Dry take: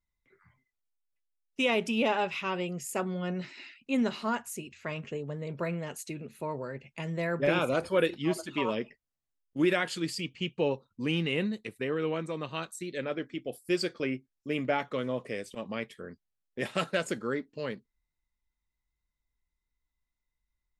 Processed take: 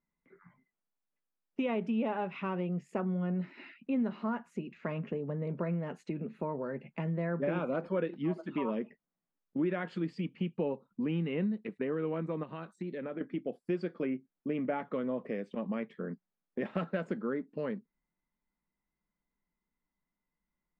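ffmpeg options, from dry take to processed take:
-filter_complex "[0:a]asettb=1/sr,asplit=3[s0][s1][s2];[s0]atrim=end=12.434[s3];[s1]atrim=start=12.43:end=13.21,asetpts=PTS-STARTPTS,afade=t=in:d=0.004:c=qsin,afade=t=out:st=0.776:d=0.004:c=qsin,acompressor=threshold=0.00891:ratio=4:attack=3.2:release=140:knee=1:detection=peak[s4];[s2]atrim=start=13.206[s5];[s3][s4]acrossfade=d=0.004:c1=hsin:c2=qsin[s6];[s6][s5]acrossfade=d=0.004:c1=qsin:c2=hsin,lowpass=1600,lowshelf=f=130:t=q:w=3:g=-11.5,acompressor=threshold=0.0112:ratio=2.5,volume=1.68"

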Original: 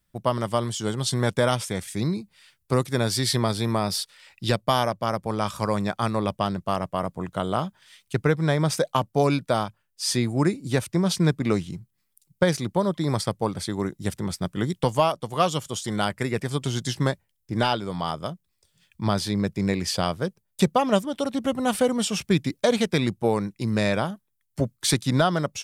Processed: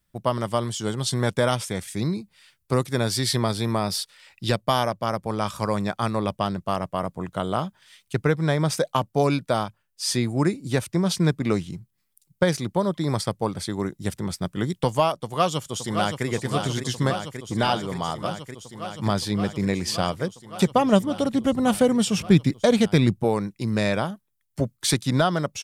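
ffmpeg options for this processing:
-filter_complex "[0:a]asplit=2[s0][s1];[s1]afade=t=in:st=15.22:d=0.01,afade=t=out:st=16.26:d=0.01,aecho=0:1:570|1140|1710|2280|2850|3420|3990|4560|5130|5700|6270|6840:0.446684|0.379681|0.322729|0.27432|0.233172|0.198196|0.168467|0.143197|0.121717|0.103459|0.0879406|0.0747495[s2];[s0][s2]amix=inputs=2:normalize=0,asettb=1/sr,asplit=3[s3][s4][s5];[s3]atrim=end=20.714[s6];[s4]atrim=start=20.71:end=23.24,asetpts=PTS-STARTPTS,afade=t=in:d=0.004:c=qsin,afade=t=out:st=2.526:d=0.004:c=qsin,lowshelf=f=250:g=9[s7];[s5]atrim=start=23.236[s8];[s6][s7]acrossfade=d=0.004:c1=hsin:c2=qsin[s9];[s9][s8]acrossfade=d=0.004:c1=qsin:c2=hsin"

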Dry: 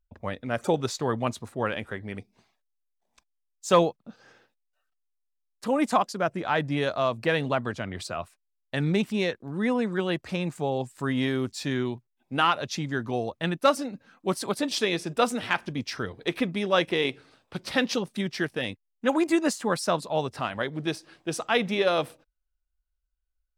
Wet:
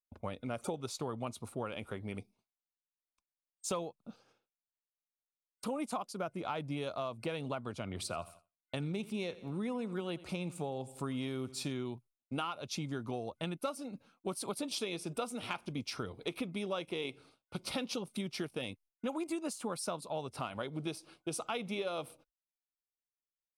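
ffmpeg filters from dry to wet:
-filter_complex "[0:a]asettb=1/sr,asplit=3[s0][s1][s2];[s0]atrim=end=7.874[s3];[s1]atrim=start=7.87:end=11.72,asetpts=PTS-STARTPTS,afade=t=in:d=0.004:c=qsin,afade=t=out:st=3.846:d=0.004:c=qsin,aecho=1:1:84|168|252|336:0.0944|0.0472|0.0236|0.0118,atrim=end_sample=169785[s4];[s2]atrim=start=11.716[s5];[s3][s4]acrossfade=d=0.004:c1=hsin:c2=qsin[s6];[s6][s5]acrossfade=d=0.004:c1=qsin:c2=hsin,agate=range=0.0224:threshold=0.00447:ratio=3:detection=peak,superequalizer=11b=0.316:16b=2.24,acompressor=threshold=0.0282:ratio=6,volume=0.668"

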